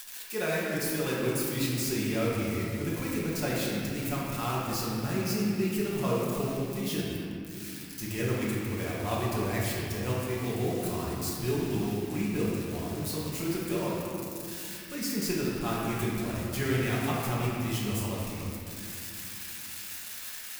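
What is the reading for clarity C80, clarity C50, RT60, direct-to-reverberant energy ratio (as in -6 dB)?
-0.5 dB, -2.0 dB, 2.6 s, -7.0 dB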